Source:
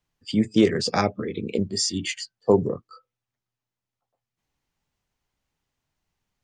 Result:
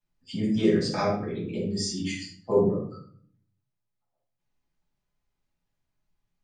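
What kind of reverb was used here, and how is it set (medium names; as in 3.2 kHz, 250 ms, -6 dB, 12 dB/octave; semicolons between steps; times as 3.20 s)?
simulated room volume 720 m³, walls furnished, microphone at 8.5 m; trim -15.5 dB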